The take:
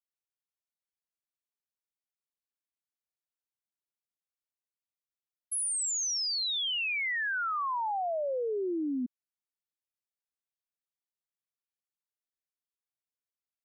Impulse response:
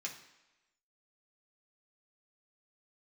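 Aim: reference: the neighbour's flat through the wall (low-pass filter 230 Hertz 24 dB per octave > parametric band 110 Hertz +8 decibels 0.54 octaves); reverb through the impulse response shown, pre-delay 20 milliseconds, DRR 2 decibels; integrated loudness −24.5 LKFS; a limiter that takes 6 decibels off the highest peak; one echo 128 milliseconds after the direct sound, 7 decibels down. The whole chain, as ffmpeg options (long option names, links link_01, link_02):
-filter_complex "[0:a]alimiter=level_in=10.5dB:limit=-24dB:level=0:latency=1,volume=-10.5dB,aecho=1:1:128:0.447,asplit=2[link_01][link_02];[1:a]atrim=start_sample=2205,adelay=20[link_03];[link_02][link_03]afir=irnorm=-1:irlink=0,volume=-1.5dB[link_04];[link_01][link_04]amix=inputs=2:normalize=0,lowpass=frequency=230:width=0.5412,lowpass=frequency=230:width=1.3066,equalizer=frequency=110:width_type=o:width=0.54:gain=8,volume=23.5dB"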